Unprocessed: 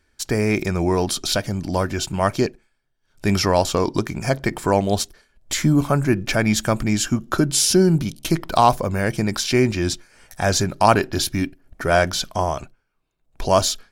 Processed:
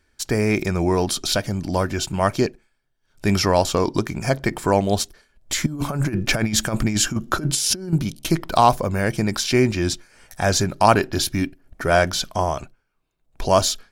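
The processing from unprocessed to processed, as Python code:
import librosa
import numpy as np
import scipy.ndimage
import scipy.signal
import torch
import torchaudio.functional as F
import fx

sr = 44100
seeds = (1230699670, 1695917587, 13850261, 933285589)

y = fx.over_compress(x, sr, threshold_db=-21.0, ratio=-0.5, at=(5.66, 7.93))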